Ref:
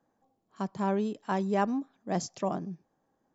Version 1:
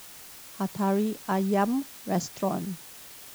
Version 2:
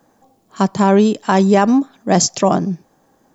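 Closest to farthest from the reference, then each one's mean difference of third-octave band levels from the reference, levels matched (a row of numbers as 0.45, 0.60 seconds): 2, 1; 2.0, 7.5 decibels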